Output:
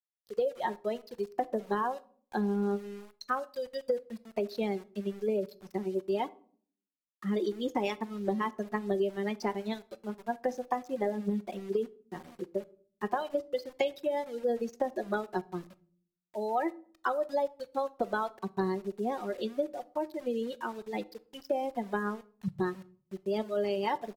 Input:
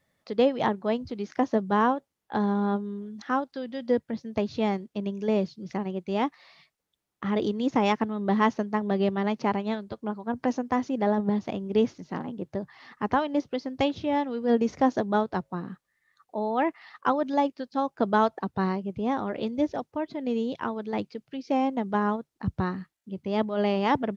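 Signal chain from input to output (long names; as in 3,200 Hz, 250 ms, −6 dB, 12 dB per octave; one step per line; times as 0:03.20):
spectral dynamics exaggerated over time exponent 2
high-pass filter 300 Hz 12 dB per octave
parametric band 490 Hz +10.5 dB 0.45 octaves
comb filter 5.4 ms, depth 47%
automatic gain control gain up to 7 dB
brickwall limiter −10 dBFS, peak gain reduction 5.5 dB
downward compressor 12 to 1, threshold −27 dBFS, peak gain reduction 14.5 dB
centre clipping without the shift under −49 dBFS
convolution reverb RT60 0.50 s, pre-delay 6 ms, DRR 16 dB
AAC 48 kbit/s 48,000 Hz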